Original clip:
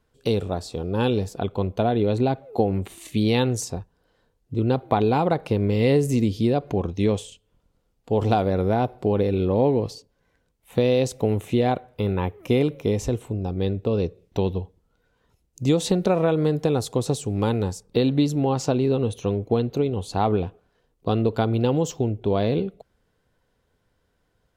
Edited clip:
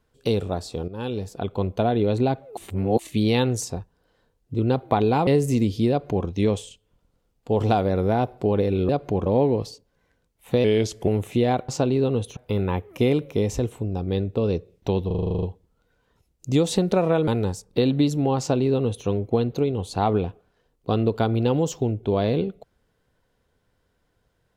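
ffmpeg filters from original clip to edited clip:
-filter_complex "[0:a]asplit=21[a][b][c][d][e][f][g][h][i][j][k][l][m][n][o][p][q][r][s][t][u];[a]atrim=end=0.88,asetpts=PTS-STARTPTS,afade=t=out:st=0.876:d=0.004:c=hsin:silence=0.223872[v];[b]atrim=start=0.88:end=2.572,asetpts=PTS-STARTPTS,afade=t=in:d=0.74:silence=0.223872[w];[c]atrim=start=2.568:end=2.992,asetpts=PTS-STARTPTS,areverse[x];[d]atrim=start=2.988:end=5.272[y];[e]atrim=start=5.878:end=9.502[z];[f]atrim=start=6.508:end=6.882[aa];[g]atrim=start=9.498:end=10.884[ab];[h]atrim=start=10.88:end=11.25,asetpts=PTS-STARTPTS,asetrate=37485,aresample=44100,atrim=end_sample=19196,asetpts=PTS-STARTPTS[ac];[i]atrim=start=11.246:end=11.862[ad];[j]atrim=start=18.568:end=19.252[ae];[k]atrim=start=11.858:end=14.602[af];[l]atrim=start=14.558:end=14.602[ag];[m]atrim=start=14.558:end=14.602[ah];[n]atrim=start=14.558:end=14.602[ai];[o]atrim=start=14.558:end=14.602[aj];[p]atrim=start=14.558:end=14.602[ak];[q]atrim=start=14.558:end=14.602[al];[r]atrim=start=14.558:end=14.602[am];[s]atrim=start=14.558:end=14.602[an];[t]atrim=start=14.558:end=16.412[ao];[u]atrim=start=17.458[ap];[v][w]concat=n=2:v=0:a=1[aq];[aq][x]acrossfade=d=0.004:c1=hsin:c2=hsin[ar];[ar][y]acrossfade=d=0.004:c1=hsin:c2=hsin[as];[as][z]acrossfade=d=0.004:c1=hsin:c2=hsin[at];[at][aa]acrossfade=d=0.004:c1=hsin:c2=hsin[au];[au][ab]acrossfade=d=0.004:c1=hsin:c2=hsin[av];[av][ac]acrossfade=d=0.004:c1=hsin:c2=hsin[aw];[aw][ad]acrossfade=d=0.004:c1=hsin:c2=hsin[ax];[ax][ae]acrossfade=d=0.004:c1=hsin:c2=hsin[ay];[ay][af]acrossfade=d=0.004:c1=hsin:c2=hsin[az];[az][ag]acrossfade=d=0.004:c1=hsin:c2=hsin[ba];[ba][ah]acrossfade=d=0.004:c1=hsin:c2=hsin[bb];[bb][ai]acrossfade=d=0.004:c1=hsin:c2=hsin[bc];[bc][aj]acrossfade=d=0.004:c1=hsin:c2=hsin[bd];[bd][ak]acrossfade=d=0.004:c1=hsin:c2=hsin[be];[be][al]acrossfade=d=0.004:c1=hsin:c2=hsin[bf];[bf][am]acrossfade=d=0.004:c1=hsin:c2=hsin[bg];[bg][an]acrossfade=d=0.004:c1=hsin:c2=hsin[bh];[bh][ao]acrossfade=d=0.004:c1=hsin:c2=hsin[bi];[bi][ap]acrossfade=d=0.004:c1=hsin:c2=hsin"

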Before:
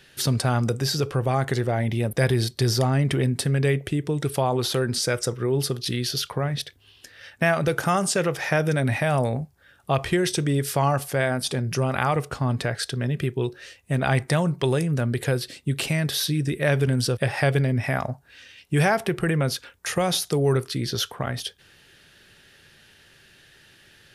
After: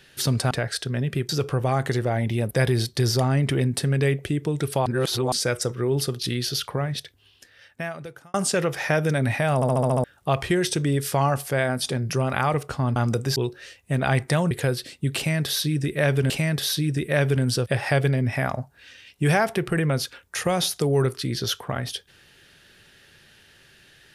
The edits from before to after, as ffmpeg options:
-filter_complex "[0:a]asplit=17[a][b][c][d][e][f][g][h][i][j][k][l][m][n][o][p][q];[a]atrim=end=0.512[r];[b]atrim=start=12.578:end=13.362[s];[c]atrim=start=0.908:end=4.482[t];[d]atrim=start=4.478:end=4.942,asetpts=PTS-STARTPTS,areverse[u];[e]atrim=start=4.938:end=7.96,asetpts=PTS-STARTPTS,afade=t=out:st=1.402:d=1.62[v];[f]atrim=start=7.96:end=9.242,asetpts=PTS-STARTPTS,afade=t=in:d=0.004:c=hsin[w];[g]atrim=start=9.168:end=9.242[x];[h]atrim=start=9.168:end=9.242[y];[i]atrim=start=9.168:end=9.242[z];[j]atrim=start=9.168:end=9.242[aa];[k]atrim=start=9.168:end=9.242[ab];[l]atrim=start=9.168:end=9.242[ac];[m]atrim=start=9.658:end=12.582[ad];[n]atrim=start=0.508:end=0.912[ae];[o]atrim=start=13.358:end=14.512[af];[p]atrim=start=15.148:end=16.942[ag];[q]atrim=start=15.808[ah];[r][s]acrossfade=d=0.004:c1=hsin:c2=hsin[ai];[ai][t]acrossfade=d=0.004:c1=hsin:c2=hsin[aj];[aj][u]acrossfade=d=0.004:c1=hsin:c2=hsin[ak];[v][w]concat=n=2:v=0:a=1[al];[ak][al]acrossfade=d=0.004:c1=hsin:c2=hsin[am];[am][x]acrossfade=d=0.004:c1=hsin:c2=hsin[an];[an][y]acrossfade=d=0.004:c1=hsin:c2=hsin[ao];[ao][z]acrossfade=d=0.004:c1=hsin:c2=hsin[ap];[ap][aa]acrossfade=d=0.004:c1=hsin:c2=hsin[aq];[aq][ab]acrossfade=d=0.004:c1=hsin:c2=hsin[ar];[ar][ac]acrossfade=d=0.004:c1=hsin:c2=hsin[as];[as][ad]acrossfade=d=0.004:c1=hsin:c2=hsin[at];[at][ae]acrossfade=d=0.004:c1=hsin:c2=hsin[au];[au][af]acrossfade=d=0.004:c1=hsin:c2=hsin[av];[av][ag]acrossfade=d=0.004:c1=hsin:c2=hsin[aw];[aw][ah]acrossfade=d=0.004:c1=hsin:c2=hsin"

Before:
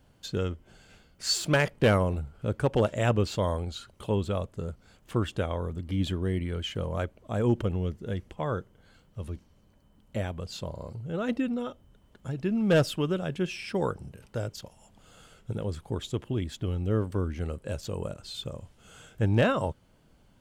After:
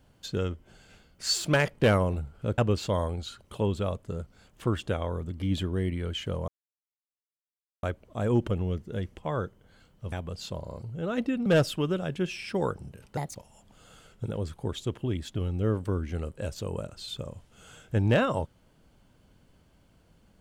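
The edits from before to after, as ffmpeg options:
-filter_complex "[0:a]asplit=7[a][b][c][d][e][f][g];[a]atrim=end=2.582[h];[b]atrim=start=3.068:end=6.97,asetpts=PTS-STARTPTS,afade=t=out:st=3.898:d=0.004:c=hsin,apad=pad_dur=1.35[i];[c]atrim=start=6.97:end=9.262,asetpts=PTS-STARTPTS,afade=t=in:d=0.004:c=hsin[j];[d]atrim=start=10.228:end=11.572[k];[e]atrim=start=12.658:end=14.374[l];[f]atrim=start=14.37:end=14.62,asetpts=PTS-STARTPTS,asetrate=60417,aresample=44100,atrim=end_sample=8047,asetpts=PTS-STARTPTS[m];[g]atrim=start=14.616[n];[i][j]concat=n=2:v=0:a=1[o];[h][o]acrossfade=d=0.004:c1=hsin:c2=hsin[p];[p][k]acrossfade=d=0.004:c1=hsin:c2=hsin[q];[q][l]acrossfade=d=0.004:c1=hsin:c2=hsin[r];[r][m]acrossfade=d=0.004:c1=hsin:c2=hsin[s];[s][n]acrossfade=d=0.004:c1=hsin:c2=hsin"

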